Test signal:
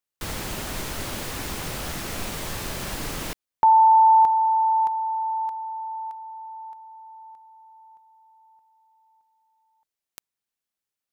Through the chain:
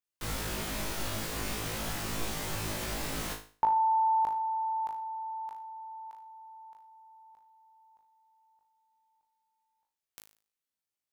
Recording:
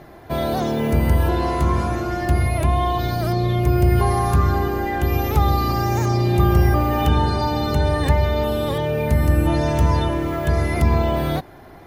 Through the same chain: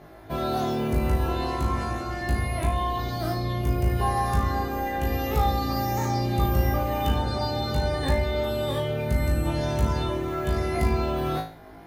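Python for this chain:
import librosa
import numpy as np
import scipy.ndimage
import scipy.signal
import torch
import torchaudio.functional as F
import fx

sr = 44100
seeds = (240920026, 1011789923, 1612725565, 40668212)

y = fx.room_flutter(x, sr, wall_m=3.2, rt60_s=0.39)
y = y * librosa.db_to_amplitude(-7.0)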